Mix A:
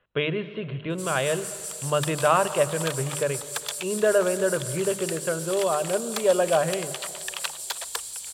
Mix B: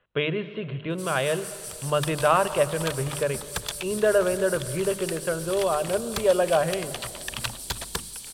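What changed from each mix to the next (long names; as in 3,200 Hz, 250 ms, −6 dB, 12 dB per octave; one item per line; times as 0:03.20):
first sound: add parametric band 7,300 Hz −11 dB 0.23 octaves
second sound: remove Butterworth high-pass 470 Hz 36 dB per octave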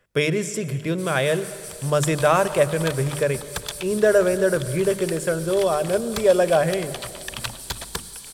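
speech: remove Chebyshev low-pass with heavy ripple 4,100 Hz, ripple 6 dB
second sound: send +9.5 dB
master: add notch filter 2,800 Hz, Q 21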